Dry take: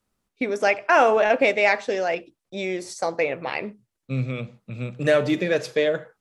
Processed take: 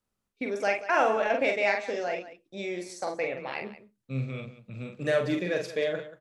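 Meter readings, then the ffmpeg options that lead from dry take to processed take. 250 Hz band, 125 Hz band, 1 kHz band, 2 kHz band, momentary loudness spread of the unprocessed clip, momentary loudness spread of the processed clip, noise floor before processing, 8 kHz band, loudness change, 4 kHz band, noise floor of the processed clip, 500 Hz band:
-6.5 dB, -6.0 dB, -6.5 dB, -6.5 dB, 14 LU, 14 LU, -81 dBFS, -6.5 dB, -6.5 dB, -6.5 dB, -83 dBFS, -6.5 dB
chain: -af "aecho=1:1:45|183:0.596|0.188,volume=-8dB"

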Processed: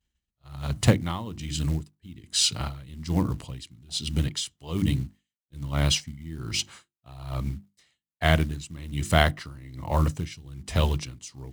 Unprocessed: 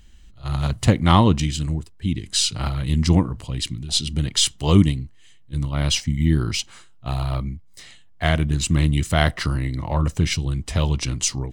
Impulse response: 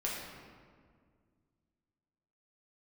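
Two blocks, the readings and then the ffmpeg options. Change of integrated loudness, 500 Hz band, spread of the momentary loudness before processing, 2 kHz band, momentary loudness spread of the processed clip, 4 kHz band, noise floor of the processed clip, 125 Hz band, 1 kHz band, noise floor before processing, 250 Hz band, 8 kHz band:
-6.0 dB, -4.0 dB, 12 LU, -3.0 dB, 17 LU, -5.5 dB, under -85 dBFS, -7.0 dB, -6.0 dB, -47 dBFS, -8.5 dB, -6.5 dB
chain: -af "acrusher=bits=7:mode=log:mix=0:aa=0.000001,highpass=55,agate=range=-33dB:threshold=-41dB:ratio=3:detection=peak,bandreject=f=50:t=h:w=6,bandreject=f=100:t=h:w=6,bandreject=f=150:t=h:w=6,bandreject=f=200:t=h:w=6,bandreject=f=250:t=h:w=6,bandreject=f=300:t=h:w=6,bandreject=f=350:t=h:w=6,aeval=exprs='val(0)*pow(10,-20*(0.5-0.5*cos(2*PI*1.2*n/s))/20)':c=same"

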